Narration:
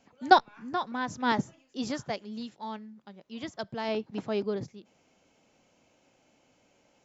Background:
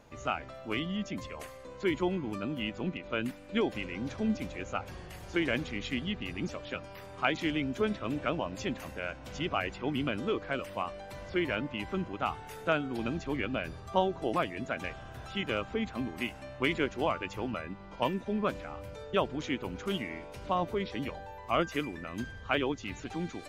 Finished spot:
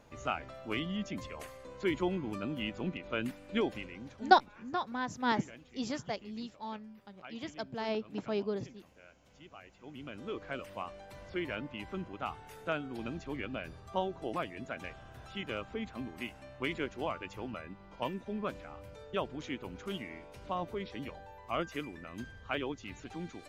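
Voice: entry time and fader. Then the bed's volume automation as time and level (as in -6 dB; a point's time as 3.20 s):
4.00 s, -3.5 dB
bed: 3.64 s -2 dB
4.53 s -21 dB
9.67 s -21 dB
10.43 s -6 dB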